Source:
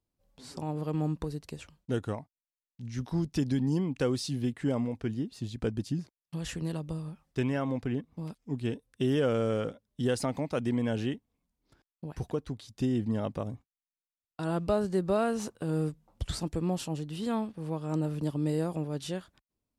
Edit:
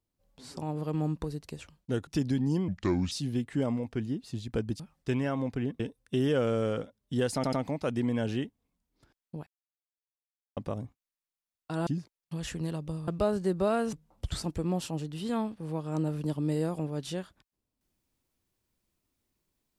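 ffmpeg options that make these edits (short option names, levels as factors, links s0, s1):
-filter_complex "[0:a]asplit=13[s0][s1][s2][s3][s4][s5][s6][s7][s8][s9][s10][s11][s12];[s0]atrim=end=2.072[s13];[s1]atrim=start=3.278:end=3.894[s14];[s2]atrim=start=3.89:end=4.2,asetpts=PTS-STARTPTS,asetrate=31311,aresample=44100[s15];[s3]atrim=start=4.196:end=5.882[s16];[s4]atrim=start=7.088:end=8.092[s17];[s5]atrim=start=8.668:end=10.312[s18];[s6]atrim=start=10.218:end=10.312[s19];[s7]atrim=start=10.218:end=12.16,asetpts=PTS-STARTPTS,afade=t=out:st=1.938:d=0.004:c=hsin[s20];[s8]atrim=start=12.16:end=13.26,asetpts=PTS-STARTPTS,volume=0[s21];[s9]atrim=start=13.26:end=14.562,asetpts=PTS-STARTPTS,afade=t=in:d=0.004:c=hsin[s22];[s10]atrim=start=5.878:end=7.092[s23];[s11]atrim=start=14.558:end=15.412[s24];[s12]atrim=start=15.898[s25];[s13][s14]acrossfade=d=0.004:c1=hsin:c2=hsin[s26];[s26][s15]acrossfade=d=0.004:c1=hsin:c2=hsin[s27];[s27][s16]acrossfade=d=0.004:c1=hsin:c2=hsin[s28];[s28][s17]acrossfade=d=0.004:c1=hsin:c2=hsin[s29];[s29][s18]acrossfade=d=0.004:c1=hsin:c2=hsin[s30];[s30][s19]acrossfade=d=0.004:c1=hsin:c2=hsin[s31];[s20][s21][s22]concat=n=3:v=0:a=1[s32];[s31][s32]acrossfade=d=0.004:c1=hsin:c2=hsin[s33];[s33][s23]acrossfade=d=0.004:c1=hsin:c2=hsin[s34];[s34][s24]acrossfade=d=0.004:c1=hsin:c2=hsin[s35];[s35][s25]acrossfade=d=0.004:c1=hsin:c2=hsin"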